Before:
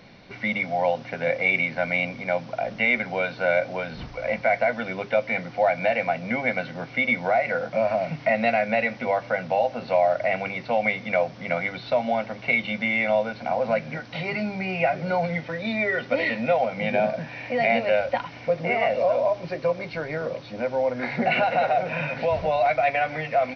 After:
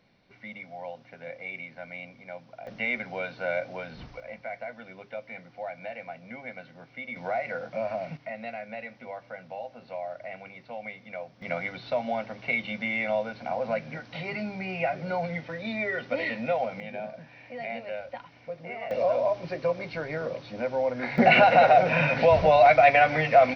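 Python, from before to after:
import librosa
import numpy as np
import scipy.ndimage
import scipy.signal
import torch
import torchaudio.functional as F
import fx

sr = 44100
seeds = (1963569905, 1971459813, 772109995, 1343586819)

y = fx.gain(x, sr, db=fx.steps((0.0, -16.0), (2.67, -7.5), (4.2, -15.5), (7.16, -8.0), (8.17, -15.5), (11.42, -5.5), (16.8, -14.0), (18.91, -3.0), (21.18, 4.5)))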